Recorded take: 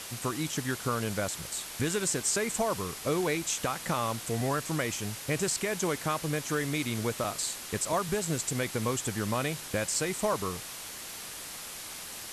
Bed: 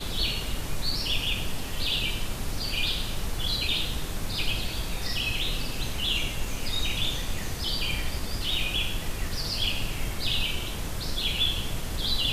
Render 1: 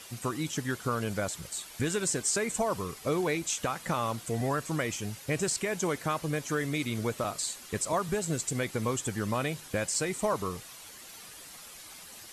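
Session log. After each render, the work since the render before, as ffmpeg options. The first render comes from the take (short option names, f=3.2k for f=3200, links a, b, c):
-af "afftdn=nr=9:nf=-42"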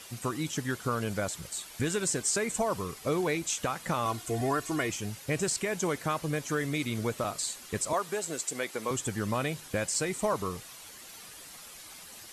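-filter_complex "[0:a]asettb=1/sr,asplit=3[a][b][c];[a]atrim=end=4.054[d];[b]atrim=start=4.05:end=4.9,asetpts=PTS-STARTPTS,afade=t=in:d=0.004:c=qsin,afade=t=out:st=0.846:d=0.004:c=qsin,aecho=1:1:2.8:0.65,atrim=end_sample=37485[e];[c]atrim=start=4.896[f];[d][e]acrossfade=d=0.004:c1=hsin:c2=qsin[g];[g][f]acrossfade=d=0.004:c1=qsin:c2=hsin,asettb=1/sr,asplit=3[h][i][j];[h]atrim=end=7.934[k];[i]atrim=start=7.93:end=8.91,asetpts=PTS-STARTPTS,afade=t=in:d=0.004:c=qsin,afade=t=out:st=0.976:d=0.004:c=qsin,highpass=350[l];[j]atrim=start=8.906[m];[k][l]acrossfade=d=0.004:c1=hsin:c2=qsin[n];[n][m]acrossfade=d=0.004:c1=qsin:c2=hsin"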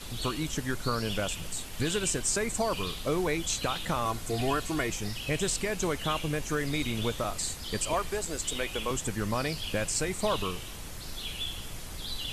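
-filter_complex "[1:a]volume=-10dB[a];[0:a][a]amix=inputs=2:normalize=0"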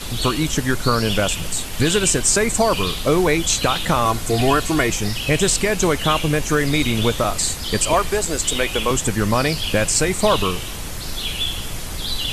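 -af "volume=12dB"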